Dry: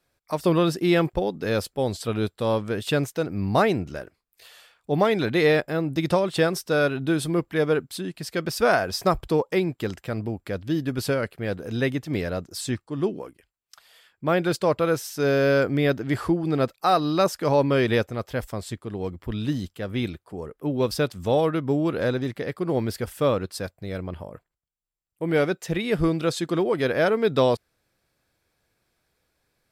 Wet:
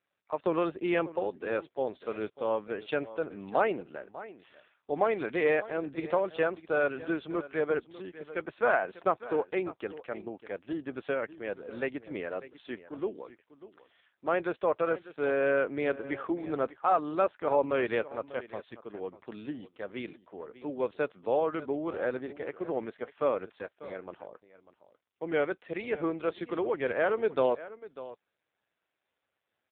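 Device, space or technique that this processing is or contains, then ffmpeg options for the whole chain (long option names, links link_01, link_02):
satellite phone: -af "highpass=380,lowpass=3000,aecho=1:1:595:0.158,volume=-4dB" -ar 8000 -c:a libopencore_amrnb -b:a 5900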